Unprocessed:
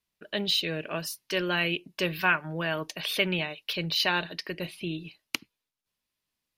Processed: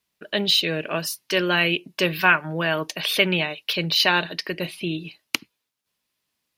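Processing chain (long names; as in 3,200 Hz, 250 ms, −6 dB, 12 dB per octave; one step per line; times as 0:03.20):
high-pass filter 110 Hz 6 dB per octave
level +7 dB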